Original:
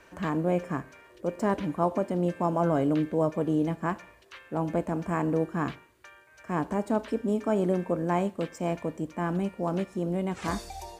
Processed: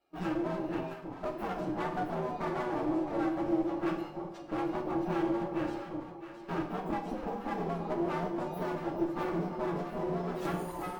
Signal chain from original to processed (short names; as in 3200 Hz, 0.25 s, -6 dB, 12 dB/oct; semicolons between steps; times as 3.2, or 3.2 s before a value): inharmonic rescaling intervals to 124%; gate -49 dBFS, range -23 dB; band shelf 530 Hz +9 dB 2.8 oct; compressor 6:1, threshold -30 dBFS, peak gain reduction 15 dB; notch comb 500 Hz; one-sided clip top -44.5 dBFS; echo with dull and thin repeats by turns 0.333 s, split 950 Hz, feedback 56%, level -4 dB; reverb RT60 0.70 s, pre-delay 3 ms, DRR 2.5 dB